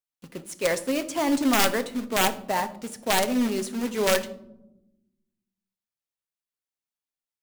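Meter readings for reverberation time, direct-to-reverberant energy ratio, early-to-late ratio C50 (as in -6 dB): not exponential, 8.0 dB, 15.0 dB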